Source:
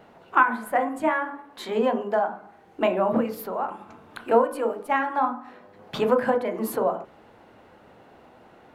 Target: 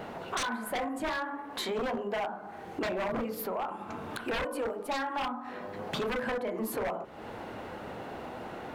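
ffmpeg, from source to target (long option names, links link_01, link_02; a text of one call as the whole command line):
ffmpeg -i in.wav -af "aeval=exprs='0.1*(abs(mod(val(0)/0.1+3,4)-2)-1)':channel_layout=same,acompressor=threshold=-44dB:ratio=4,aeval=exprs='0.0562*(cos(1*acos(clip(val(0)/0.0562,-1,1)))-cos(1*PI/2))+0.02*(cos(5*acos(clip(val(0)/0.0562,-1,1)))-cos(5*PI/2))':channel_layout=same,volume=2dB" out.wav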